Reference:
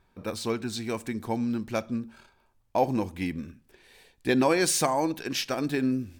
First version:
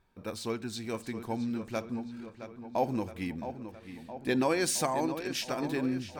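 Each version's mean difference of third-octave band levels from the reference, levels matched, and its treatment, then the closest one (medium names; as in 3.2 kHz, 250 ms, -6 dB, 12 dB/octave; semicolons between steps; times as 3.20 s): 3.5 dB: filtered feedback delay 667 ms, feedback 65%, low-pass 4 kHz, level -10.5 dB; trim -5 dB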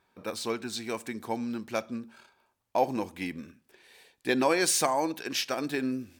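2.5 dB: high-pass 360 Hz 6 dB/octave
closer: second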